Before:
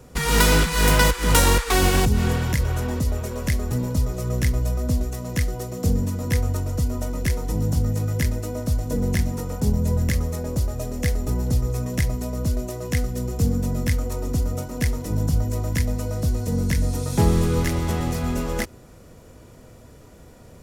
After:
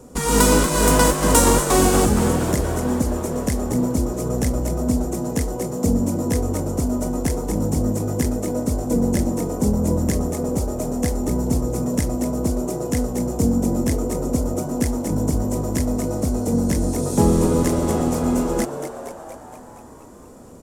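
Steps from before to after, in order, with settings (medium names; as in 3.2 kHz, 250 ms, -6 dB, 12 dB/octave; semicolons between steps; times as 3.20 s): graphic EQ 125/250/500/1000/2000/4000/8000 Hz -3/+10/+4/+5/-5/-3/+9 dB; on a send: frequency-shifting echo 234 ms, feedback 62%, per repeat +100 Hz, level -10 dB; on the sum: trim -2 dB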